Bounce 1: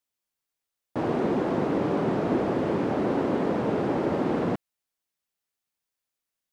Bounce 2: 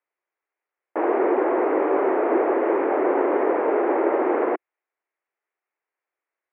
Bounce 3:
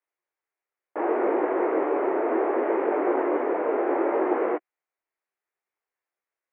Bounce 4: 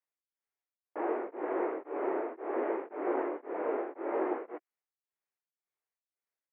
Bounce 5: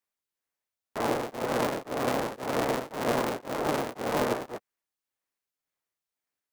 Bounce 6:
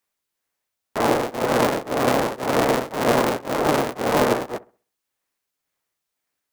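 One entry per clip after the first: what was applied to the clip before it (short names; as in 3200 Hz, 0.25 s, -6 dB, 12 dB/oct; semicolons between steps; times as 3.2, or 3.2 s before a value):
elliptic band-pass 350–2200 Hz, stop band 40 dB; gain +7.5 dB
detuned doubles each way 24 cents
beating tremolo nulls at 1.9 Hz; gain -7 dB
cycle switcher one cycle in 3, inverted; gain +4.5 dB
dark delay 65 ms, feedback 31%, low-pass 1500 Hz, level -19 dB; gain +8.5 dB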